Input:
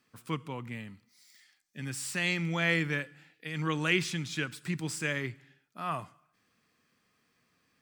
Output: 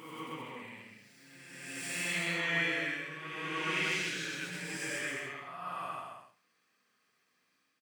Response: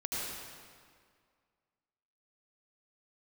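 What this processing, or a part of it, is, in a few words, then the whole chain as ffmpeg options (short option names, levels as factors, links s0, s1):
ghost voice: -filter_complex "[0:a]areverse[s0];[1:a]atrim=start_sample=2205[s1];[s0][s1]afir=irnorm=-1:irlink=0,areverse,highpass=f=670:p=1,aecho=1:1:130|214.5|269.4|305.1|328.3:0.631|0.398|0.251|0.158|0.1,volume=0.447"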